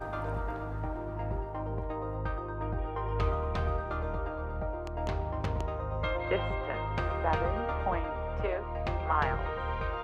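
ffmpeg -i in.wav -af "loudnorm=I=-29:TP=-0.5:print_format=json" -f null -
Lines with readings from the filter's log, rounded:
"input_i" : "-33.3",
"input_tp" : "-14.0",
"input_lra" : "2.4",
"input_thresh" : "-43.3",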